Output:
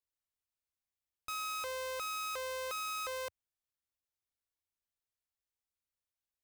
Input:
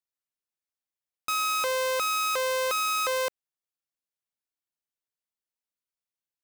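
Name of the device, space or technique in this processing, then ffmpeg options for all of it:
car stereo with a boomy subwoofer: -af "lowshelf=frequency=120:width_type=q:width=1.5:gain=9.5,alimiter=level_in=6dB:limit=-24dB:level=0:latency=1,volume=-6dB,volume=-3.5dB"

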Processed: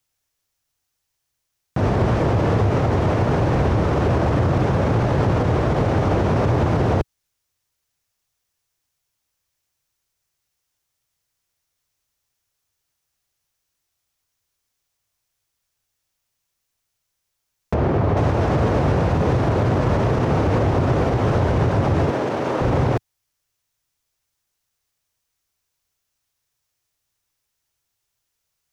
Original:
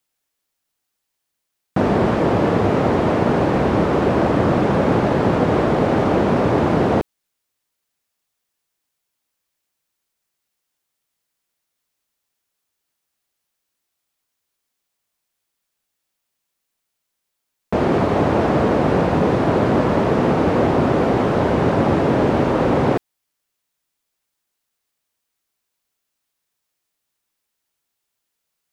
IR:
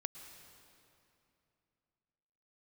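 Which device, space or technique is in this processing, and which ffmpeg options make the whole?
car stereo with a boomy subwoofer: -filter_complex "[0:a]lowshelf=frequency=150:width_type=q:width=1.5:gain=8.5,equalizer=frequency=5900:width=2.7:gain=4.5,alimiter=limit=-10.5dB:level=0:latency=1:release=50,asettb=1/sr,asplit=3[link_01][link_02][link_03];[link_01]atrim=end=17.744[link_04];[link_02]atrim=start=17.74:end=18.17,asetpts=PTS-STARTPTS,afade=type=in:duration=0.004:curve=qsin,afade=type=out:start_time=0.426:duration=0.004:curve=qsin,lowpass=frequency=1700:poles=1[link_05];[link_03]atrim=start=18.166[link_06];[link_04][link_05]acrossfade=duration=0.004:curve1=hsin:curve2=qsin[link_07];[link_07][link_06]acrossfade=duration=0.004:curve1=qsin:curve2=hsin,asettb=1/sr,asplit=3[link_08][link_09][link_10];[link_08]atrim=end=22.104[link_11];[link_09]atrim=start=22.1:end=22.61,asetpts=PTS-STARTPTS,afade=type=in:duration=0.004:curve=qsin,afade=type=out:start_time=0.506:duration=0.004:curve=qsin,highpass=250[link_12];[link_10]atrim=start=22.606[link_13];[link_11][link_12]acrossfade=duration=0.004:curve1=hsin:curve2=qsin[link_14];[link_14][link_13]acrossfade=duration=0.004:curve1=qsin:curve2=hsin"

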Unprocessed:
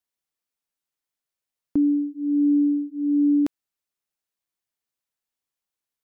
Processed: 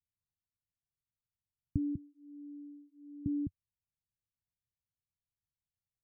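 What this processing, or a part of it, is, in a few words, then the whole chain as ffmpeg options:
the neighbour's flat through the wall: -filter_complex "[0:a]asettb=1/sr,asplit=3[link_01][link_02][link_03];[link_01]atrim=end=1.954[link_04];[link_02]atrim=start=1.95:end=3.26,asetpts=PTS-STARTPTS,afade=type=in:duration=0.004:curve=qsin,afade=type=out:start_time=1.306:duration=0.004:curve=qsin,highpass=630[link_05];[link_03]atrim=start=3.256[link_06];[link_04][link_05]acrossfade=duration=0.004:curve1=hsin:curve2=qsin[link_07];[link_07][link_06]acrossfade=duration=0.004:curve1=qsin:curve2=hsin,lowpass=frequency=160:width=0.5412,lowpass=frequency=160:width=1.3066,equalizer=frequency=93:width_type=o:width=0.96:gain=7,volume=5dB"

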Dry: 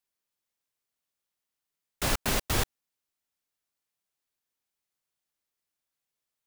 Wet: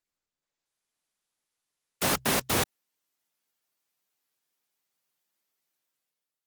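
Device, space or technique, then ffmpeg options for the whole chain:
video call: -filter_complex "[0:a]asplit=3[link_01][link_02][link_03];[link_01]afade=type=out:start_time=2.05:duration=0.02[link_04];[link_02]bandreject=frequency=64.31:width_type=h:width=4,bandreject=frequency=128.62:width_type=h:width=4,afade=type=in:start_time=2.05:duration=0.02,afade=type=out:start_time=2.58:duration=0.02[link_05];[link_03]afade=type=in:start_time=2.58:duration=0.02[link_06];[link_04][link_05][link_06]amix=inputs=3:normalize=0,highpass=140,dynaudnorm=framelen=260:gausssize=5:maxgain=12dB,volume=-7dB" -ar 48000 -c:a libopus -b:a 20k

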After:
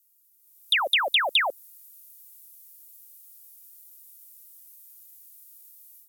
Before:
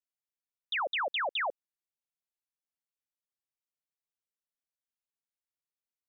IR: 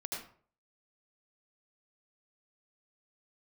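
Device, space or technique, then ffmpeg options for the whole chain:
FM broadcast chain: -filter_complex "[0:a]highpass=74,dynaudnorm=framelen=400:gausssize=3:maxgain=15dB,acrossover=split=550|3200[link_01][link_02][link_03];[link_01]acompressor=threshold=-34dB:ratio=4[link_04];[link_02]acompressor=threshold=-29dB:ratio=4[link_05];[link_03]acompressor=threshold=-33dB:ratio=4[link_06];[link_04][link_05][link_06]amix=inputs=3:normalize=0,aemphasis=mode=production:type=75fm,alimiter=limit=-16.5dB:level=0:latency=1:release=49,asoftclip=type=hard:threshold=-19dB,lowpass=frequency=15000:width=0.5412,lowpass=frequency=15000:width=1.3066,aemphasis=mode=production:type=75fm"

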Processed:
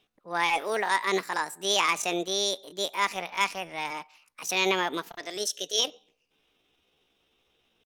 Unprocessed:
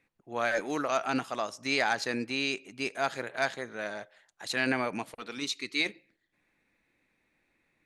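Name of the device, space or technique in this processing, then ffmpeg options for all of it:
chipmunk voice: -filter_complex "[0:a]asettb=1/sr,asplit=3[link_01][link_02][link_03];[link_01]atrim=end=2.734[link_04];[link_02]atrim=start=2.73:end=3.92,asetpts=PTS-STARTPTS,afade=type=in:duration=0.004:curve=qsin,afade=type=out:start_time=1.186:duration=0.004:curve=qsin,asubboost=boost=10.5:cutoff=90[link_05];[link_03]atrim=start=3.916[link_06];[link_04][link_05]acrossfade=duration=0.004:curve1=hsin:curve2=qsin[link_07];[link_07][link_06]acrossfade=duration=0.004:curve1=qsin:curve2=hsin,asetrate=64194,aresample=44100,atempo=0.686977,volume=3.5dB"

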